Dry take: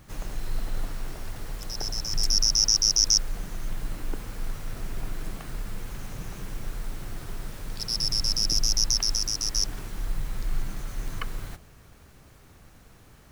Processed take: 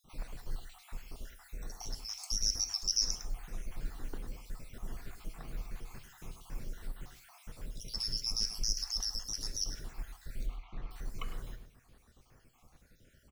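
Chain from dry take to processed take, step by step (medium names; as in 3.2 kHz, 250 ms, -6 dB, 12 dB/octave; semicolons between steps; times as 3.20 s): random holes in the spectrogram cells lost 54%; 10.46–10.91 s: low-pass 3.5 kHz 24 dB/octave; echo from a far wall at 18 m, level -12 dB; gated-style reverb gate 180 ms falling, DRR 7.5 dB; trim -8 dB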